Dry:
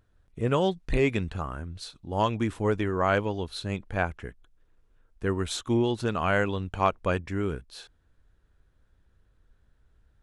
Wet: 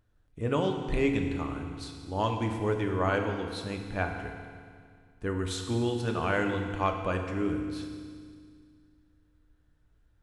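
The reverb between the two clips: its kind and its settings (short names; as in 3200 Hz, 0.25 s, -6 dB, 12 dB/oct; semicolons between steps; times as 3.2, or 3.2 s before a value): FDN reverb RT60 2 s, low-frequency decay 1.3×, high-frequency decay 1×, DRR 3 dB; gain -4.5 dB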